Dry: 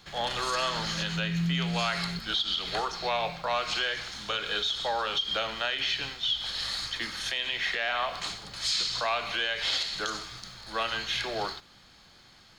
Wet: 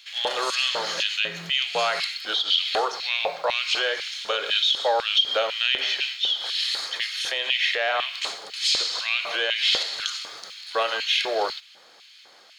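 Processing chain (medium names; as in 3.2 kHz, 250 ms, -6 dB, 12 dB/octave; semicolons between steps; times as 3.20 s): LFO high-pass square 2 Hz 490–2600 Hz; trim +3.5 dB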